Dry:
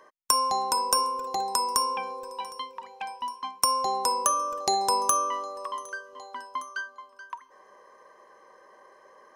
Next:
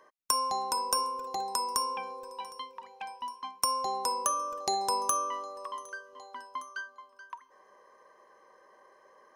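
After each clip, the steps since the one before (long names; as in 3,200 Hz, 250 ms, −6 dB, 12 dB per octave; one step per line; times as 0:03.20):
notch filter 7,600 Hz, Q 16
level −5 dB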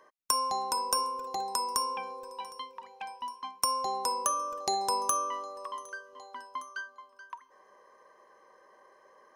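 no processing that can be heard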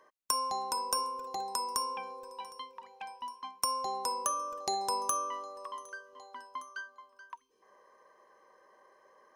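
gain on a spectral selection 0:07.35–0:07.62, 500–2,200 Hz −16 dB
level −3 dB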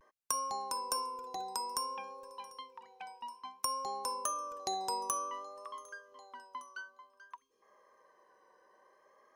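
pitch vibrato 0.56 Hz 50 cents
level −3.5 dB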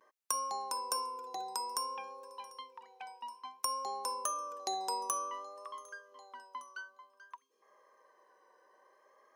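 high-pass filter 290 Hz 12 dB per octave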